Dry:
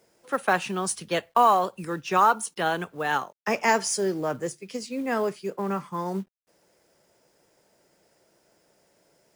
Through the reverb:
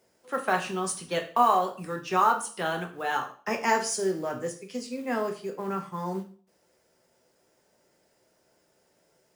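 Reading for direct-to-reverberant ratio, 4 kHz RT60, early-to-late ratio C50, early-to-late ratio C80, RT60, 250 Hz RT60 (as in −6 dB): 3.5 dB, 0.40 s, 11.5 dB, 15.5 dB, 0.45 s, 0.45 s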